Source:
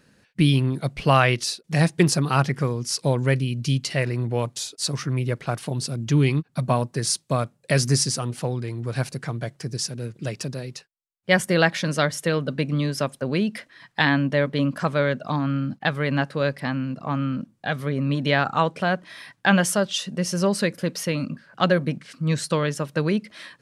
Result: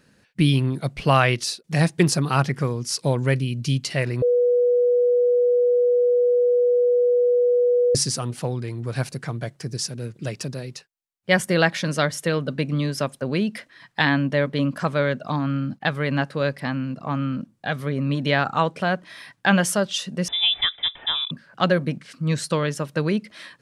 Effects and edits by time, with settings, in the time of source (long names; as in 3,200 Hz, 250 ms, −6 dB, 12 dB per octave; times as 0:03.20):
0:04.22–0:07.95: beep over 488 Hz −15 dBFS
0:20.28–0:21.31: voice inversion scrambler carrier 3,700 Hz